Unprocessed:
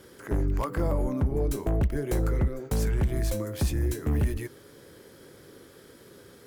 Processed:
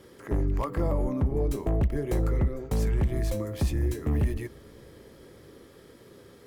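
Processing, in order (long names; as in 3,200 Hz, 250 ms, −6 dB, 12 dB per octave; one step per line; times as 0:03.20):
high-shelf EQ 4,500 Hz −6.5 dB
notch filter 1,500 Hz, Q 8.5
on a send: convolution reverb RT60 5.3 s, pre-delay 50 ms, DRR 23.5 dB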